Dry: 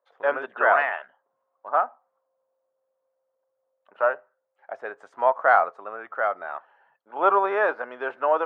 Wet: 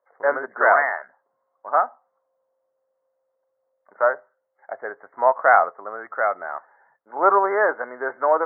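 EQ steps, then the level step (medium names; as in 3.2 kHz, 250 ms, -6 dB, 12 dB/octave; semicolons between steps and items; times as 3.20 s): brick-wall FIR low-pass 2.2 kHz; +3.0 dB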